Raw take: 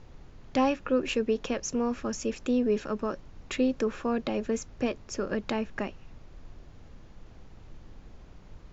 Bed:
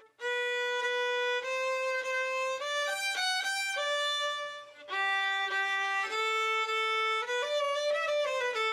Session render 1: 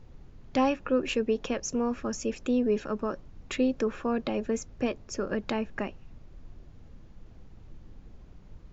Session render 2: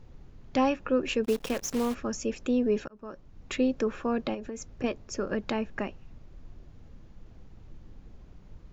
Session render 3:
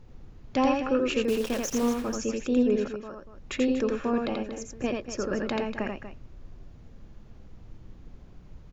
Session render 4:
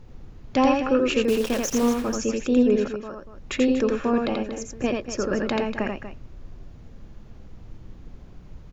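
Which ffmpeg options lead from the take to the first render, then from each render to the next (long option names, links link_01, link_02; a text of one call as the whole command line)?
ffmpeg -i in.wav -af "afftdn=noise_reduction=6:noise_floor=-51" out.wav
ffmpeg -i in.wav -filter_complex "[0:a]asplit=3[link_01][link_02][link_03];[link_01]afade=type=out:start_time=1.24:duration=0.02[link_04];[link_02]acrusher=bits=7:dc=4:mix=0:aa=0.000001,afade=type=in:start_time=1.24:duration=0.02,afade=type=out:start_time=1.93:duration=0.02[link_05];[link_03]afade=type=in:start_time=1.93:duration=0.02[link_06];[link_04][link_05][link_06]amix=inputs=3:normalize=0,asettb=1/sr,asplit=3[link_07][link_08][link_09];[link_07]atrim=end=4.344[link_10];[link_08]atrim=start=4.34:end=4.84,asetpts=PTS-STARTPTS,afade=type=in:duration=0.004:curve=qsin,afade=type=out:start_time=0.496:duration=0.004:curve=qsin,acompressor=threshold=-33dB:ratio=10:attack=3.2:release=140:knee=1:detection=peak[link_11];[link_09]atrim=start=4.836[link_12];[link_10][link_11]acrossfade=duration=0.004:curve1=hsin:curve2=qsin[link_13];[link_13][link_12]acrossfade=duration=0.004:curve1=qsin:curve2=hsin,asplit=2[link_14][link_15];[link_14]atrim=end=2.88,asetpts=PTS-STARTPTS,afade=type=out:start_time=2.876:duration=0.004:curve=hsin[link_16];[link_15]atrim=start=2.88,asetpts=PTS-STARTPTS,afade=type=in:duration=0.64[link_17];[link_16][link_17]concat=n=2:v=0:a=1" out.wav
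ffmpeg -i in.wav -af "aecho=1:1:84.55|239.1:0.708|0.282" out.wav
ffmpeg -i in.wav -af "volume=4.5dB" out.wav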